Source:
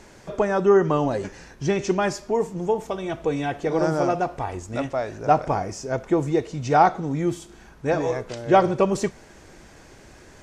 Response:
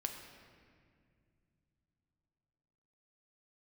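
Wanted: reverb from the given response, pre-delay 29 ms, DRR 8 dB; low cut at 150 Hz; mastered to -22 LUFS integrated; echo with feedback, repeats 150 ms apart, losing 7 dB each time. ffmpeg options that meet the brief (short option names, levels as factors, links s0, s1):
-filter_complex "[0:a]highpass=150,aecho=1:1:150|300|450|600|750:0.447|0.201|0.0905|0.0407|0.0183,asplit=2[s0][s1];[1:a]atrim=start_sample=2205,adelay=29[s2];[s1][s2]afir=irnorm=-1:irlink=0,volume=0.398[s3];[s0][s3]amix=inputs=2:normalize=0,volume=1.06"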